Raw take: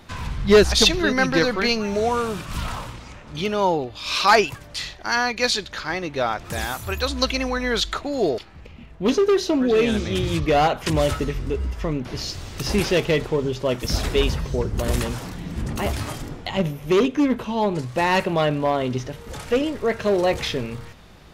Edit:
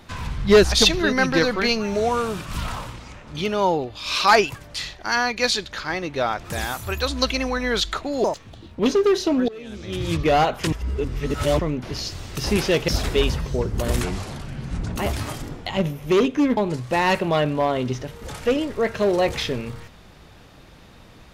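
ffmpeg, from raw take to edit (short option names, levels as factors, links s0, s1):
-filter_complex "[0:a]asplit=10[s0][s1][s2][s3][s4][s5][s6][s7][s8][s9];[s0]atrim=end=8.244[s10];[s1]atrim=start=8.24:end=9.02,asetpts=PTS-STARTPTS,asetrate=62181,aresample=44100[s11];[s2]atrim=start=9.016:end=9.71,asetpts=PTS-STARTPTS,afade=t=out:st=0.69:d=0.004:c=hsin:silence=0.0891251[s12];[s3]atrim=start=9.71:end=10.952,asetpts=PTS-STARTPTS,afade=t=in:d=0.65:c=qua:silence=0.0891251[s13];[s4]atrim=start=10.948:end=11.822,asetpts=PTS-STARTPTS,areverse[s14];[s5]atrim=start=11.818:end=13.112[s15];[s6]atrim=start=13.878:end=15.024[s16];[s7]atrim=start=15.02:end=15.76,asetpts=PTS-STARTPTS,asetrate=34839,aresample=44100[s17];[s8]atrim=start=15.756:end=17.372[s18];[s9]atrim=start=17.618[s19];[s10][s11]acrossfade=d=0.004:c1=hsin:c2=hsin[s20];[s12][s13]concat=n=2:v=0:a=1[s21];[s20][s21]acrossfade=d=0.004:c1=hsin:c2=hsin[s22];[s22][s14]acrossfade=d=0.004:c1=hsin:c2=hsin[s23];[s23][s15]acrossfade=d=0.004:c1=hsin:c2=hsin[s24];[s24][s16]acrossfade=d=0.004:c1=hsin:c2=hsin[s25];[s25][s17]acrossfade=d=0.004:c1=hsin:c2=hsin[s26];[s26][s18]acrossfade=d=0.004:c1=hsin:c2=hsin[s27];[s27][s19]acrossfade=d=0.004:c1=hsin:c2=hsin"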